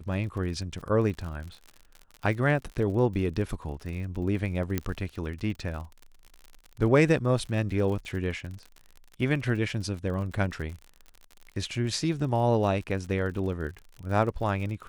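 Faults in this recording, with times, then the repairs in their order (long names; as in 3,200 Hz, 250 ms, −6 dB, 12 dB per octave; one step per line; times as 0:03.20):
surface crackle 49 per second −36 dBFS
0:04.78: click −13 dBFS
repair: click removal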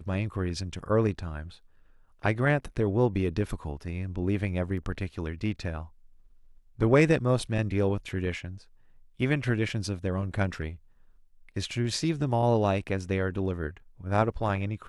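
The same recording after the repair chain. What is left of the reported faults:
0:04.78: click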